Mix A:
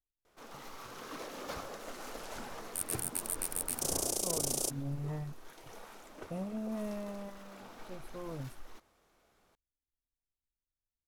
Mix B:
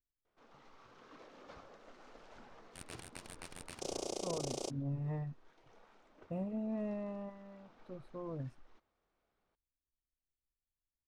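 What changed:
first sound -12.0 dB; master: add distance through air 140 m

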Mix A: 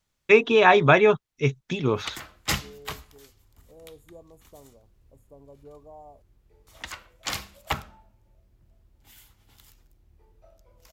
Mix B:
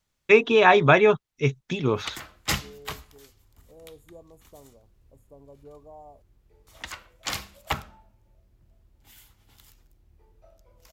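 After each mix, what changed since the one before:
no change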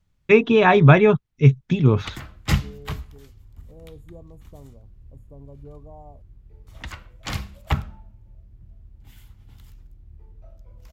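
master: add tone controls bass +14 dB, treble -6 dB

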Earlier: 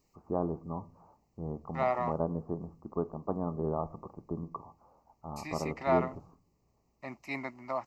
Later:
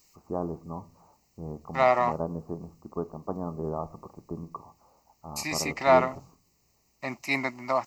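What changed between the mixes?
second voice +7.5 dB; master: add treble shelf 3 kHz +10.5 dB

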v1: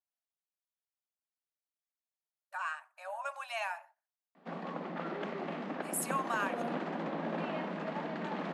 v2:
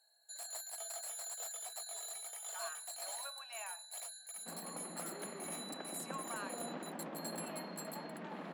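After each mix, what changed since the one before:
speech -11.5 dB; first sound: unmuted; second sound -8.5 dB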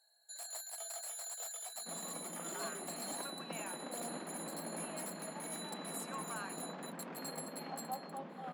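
second sound: entry -2.60 s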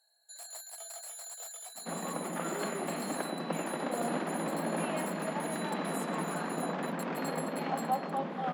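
second sound +11.5 dB

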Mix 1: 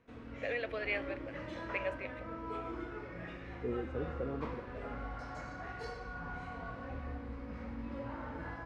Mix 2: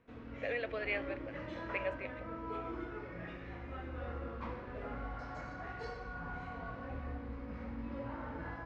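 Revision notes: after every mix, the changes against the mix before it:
second voice: muted; master: add distance through air 80 m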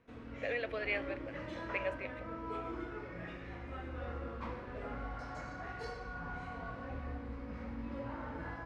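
master: remove distance through air 80 m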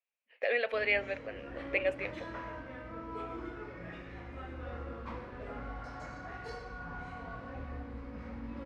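speech +6.5 dB; background: entry +0.65 s

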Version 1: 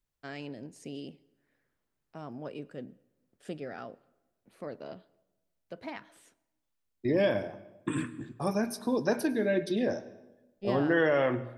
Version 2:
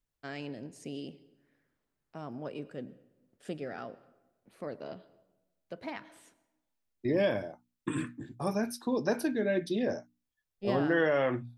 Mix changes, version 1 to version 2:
first voice: send +7.0 dB; second voice: send off

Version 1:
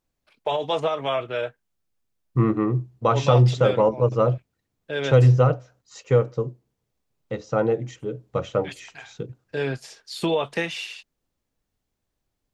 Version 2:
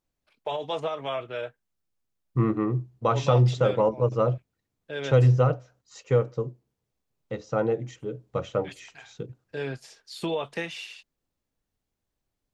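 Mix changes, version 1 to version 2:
first voice -6.0 dB; second voice -3.5 dB

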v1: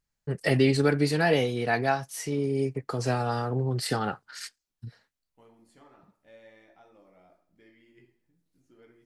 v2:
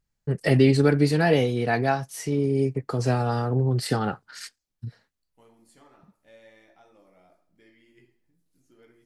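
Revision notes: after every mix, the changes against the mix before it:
first voice: add bass shelf 470 Hz +6 dB; second voice: add treble shelf 5 kHz +9.5 dB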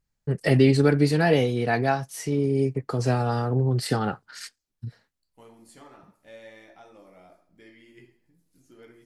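second voice +6.5 dB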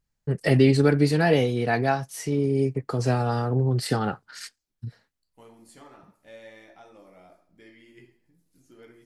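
no change

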